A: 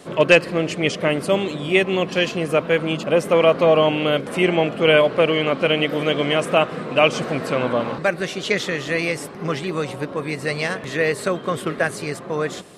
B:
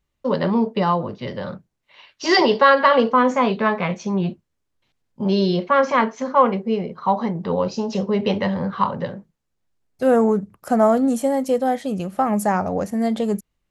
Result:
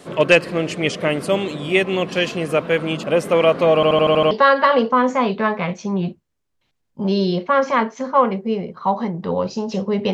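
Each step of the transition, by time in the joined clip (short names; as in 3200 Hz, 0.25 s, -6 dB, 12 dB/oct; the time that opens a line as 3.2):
A
3.75 stutter in place 0.08 s, 7 plays
4.31 switch to B from 2.52 s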